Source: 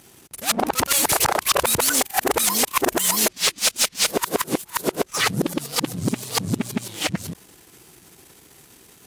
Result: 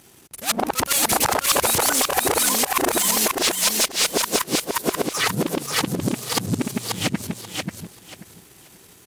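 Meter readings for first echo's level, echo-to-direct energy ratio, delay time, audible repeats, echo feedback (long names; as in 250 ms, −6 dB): −3.5 dB, −3.5 dB, 535 ms, 3, 22%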